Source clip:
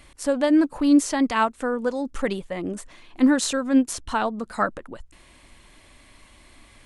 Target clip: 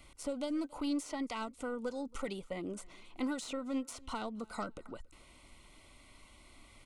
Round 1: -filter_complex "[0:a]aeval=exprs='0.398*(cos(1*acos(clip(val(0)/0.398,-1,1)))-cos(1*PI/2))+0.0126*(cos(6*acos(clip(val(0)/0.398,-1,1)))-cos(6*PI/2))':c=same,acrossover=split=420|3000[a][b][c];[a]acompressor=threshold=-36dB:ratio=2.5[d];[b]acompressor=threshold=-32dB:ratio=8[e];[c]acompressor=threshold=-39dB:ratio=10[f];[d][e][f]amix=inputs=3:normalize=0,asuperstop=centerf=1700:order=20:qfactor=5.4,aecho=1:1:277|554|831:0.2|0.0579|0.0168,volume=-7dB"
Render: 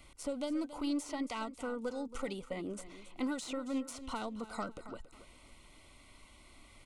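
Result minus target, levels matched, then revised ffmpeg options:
echo-to-direct +11 dB
-filter_complex "[0:a]aeval=exprs='0.398*(cos(1*acos(clip(val(0)/0.398,-1,1)))-cos(1*PI/2))+0.0126*(cos(6*acos(clip(val(0)/0.398,-1,1)))-cos(6*PI/2))':c=same,acrossover=split=420|3000[a][b][c];[a]acompressor=threshold=-36dB:ratio=2.5[d];[b]acompressor=threshold=-32dB:ratio=8[e];[c]acompressor=threshold=-39dB:ratio=10[f];[d][e][f]amix=inputs=3:normalize=0,asuperstop=centerf=1700:order=20:qfactor=5.4,aecho=1:1:277|554:0.0562|0.0163,volume=-7dB"

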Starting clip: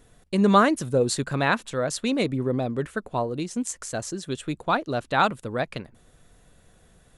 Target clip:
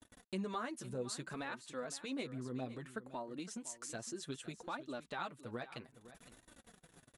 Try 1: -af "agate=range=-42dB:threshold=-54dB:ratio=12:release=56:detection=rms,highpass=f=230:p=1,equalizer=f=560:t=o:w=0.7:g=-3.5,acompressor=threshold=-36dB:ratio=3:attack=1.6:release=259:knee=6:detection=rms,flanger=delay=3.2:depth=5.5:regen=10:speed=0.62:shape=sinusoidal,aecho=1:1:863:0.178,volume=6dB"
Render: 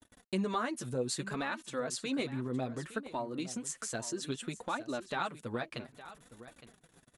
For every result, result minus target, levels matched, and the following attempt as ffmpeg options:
echo 0.352 s late; compressor: peak gain reduction -7 dB
-af "agate=range=-42dB:threshold=-54dB:ratio=12:release=56:detection=rms,highpass=f=230:p=1,equalizer=f=560:t=o:w=0.7:g=-3.5,acompressor=threshold=-36dB:ratio=3:attack=1.6:release=259:knee=6:detection=rms,flanger=delay=3.2:depth=5.5:regen=10:speed=0.62:shape=sinusoidal,aecho=1:1:511:0.178,volume=6dB"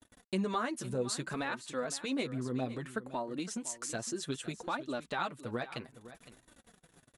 compressor: peak gain reduction -7 dB
-af "agate=range=-42dB:threshold=-54dB:ratio=12:release=56:detection=rms,highpass=f=230:p=1,equalizer=f=560:t=o:w=0.7:g=-3.5,acompressor=threshold=-46.5dB:ratio=3:attack=1.6:release=259:knee=6:detection=rms,flanger=delay=3.2:depth=5.5:regen=10:speed=0.62:shape=sinusoidal,aecho=1:1:511:0.178,volume=6dB"

